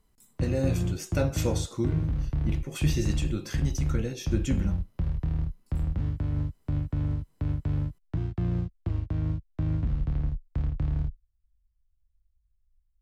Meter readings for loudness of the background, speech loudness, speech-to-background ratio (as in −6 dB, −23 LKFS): −31.0 LKFS, −32.0 LKFS, −1.0 dB